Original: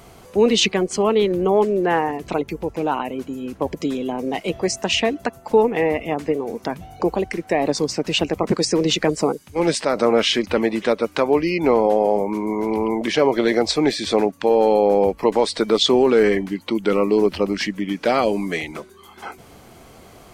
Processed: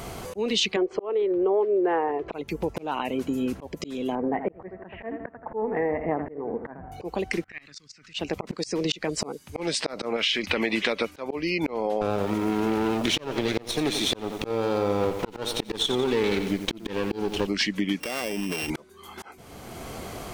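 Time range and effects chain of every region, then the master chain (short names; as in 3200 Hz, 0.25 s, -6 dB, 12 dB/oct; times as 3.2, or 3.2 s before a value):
0.76–2.32 LPF 1500 Hz + resonant low shelf 290 Hz -8 dB, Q 3
4.15–6.92 elliptic low-pass 1800 Hz, stop band 70 dB + feedback echo 83 ms, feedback 37%, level -13 dB
7.44–8.14 EQ curve 110 Hz 0 dB, 350 Hz -14 dB, 570 Hz -21 dB, 890 Hz -18 dB, 1300 Hz +6 dB, 1900 Hz +7 dB, 3100 Hz +4 dB, 7100 Hz +5 dB, 11000 Hz -6 dB + low-pass opened by the level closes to 1100 Hz, open at -24 dBFS + level quantiser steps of 24 dB
10.16–11.11 bell 2300 Hz +7.5 dB 1.1 oct + compressor 3:1, threshold -17 dBFS
12.01–17.47 minimum comb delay 0.31 ms + lo-fi delay 88 ms, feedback 55%, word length 6-bit, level -11.5 dB
18–18.7 sample sorter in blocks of 16 samples + compressor 16:1, threshold -32 dBFS
whole clip: dynamic EQ 3700 Hz, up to +7 dB, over -39 dBFS, Q 0.79; auto swell 0.691 s; compressor 4:1, threshold -32 dBFS; gain +8 dB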